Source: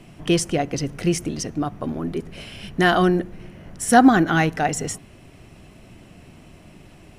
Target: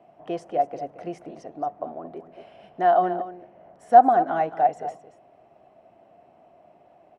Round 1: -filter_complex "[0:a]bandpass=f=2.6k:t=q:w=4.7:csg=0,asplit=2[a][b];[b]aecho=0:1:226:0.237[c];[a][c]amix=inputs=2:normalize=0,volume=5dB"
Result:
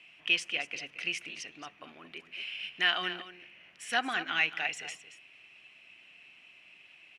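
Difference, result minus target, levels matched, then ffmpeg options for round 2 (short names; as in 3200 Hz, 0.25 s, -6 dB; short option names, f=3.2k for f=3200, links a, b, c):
2000 Hz band +18.5 dB
-filter_complex "[0:a]bandpass=f=690:t=q:w=4.7:csg=0,asplit=2[a][b];[b]aecho=0:1:226:0.237[c];[a][c]amix=inputs=2:normalize=0,volume=5dB"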